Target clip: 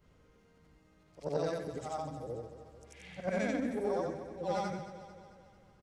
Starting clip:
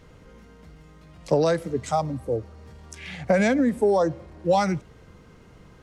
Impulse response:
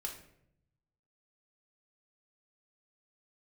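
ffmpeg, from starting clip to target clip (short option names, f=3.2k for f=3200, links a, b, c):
-af "afftfilt=real='re':imag='-im':win_size=8192:overlap=0.75,aeval=exprs='0.211*(cos(1*acos(clip(val(0)/0.211,-1,1)))-cos(1*PI/2))+0.0211*(cos(3*acos(clip(val(0)/0.211,-1,1)))-cos(3*PI/2))':c=same,aecho=1:1:222|444|666|888|1110|1332:0.251|0.136|0.0732|0.0396|0.0214|0.0115,volume=-6.5dB"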